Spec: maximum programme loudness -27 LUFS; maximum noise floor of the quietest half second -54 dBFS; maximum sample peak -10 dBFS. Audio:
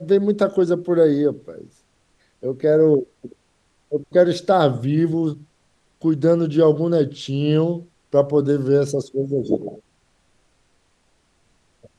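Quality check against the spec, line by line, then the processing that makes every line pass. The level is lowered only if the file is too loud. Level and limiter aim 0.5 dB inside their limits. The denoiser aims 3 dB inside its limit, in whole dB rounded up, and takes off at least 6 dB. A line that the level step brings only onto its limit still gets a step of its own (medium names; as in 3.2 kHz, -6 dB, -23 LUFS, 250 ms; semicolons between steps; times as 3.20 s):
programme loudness -19.5 LUFS: fail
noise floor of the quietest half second -63 dBFS: pass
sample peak -3.5 dBFS: fail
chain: trim -8 dB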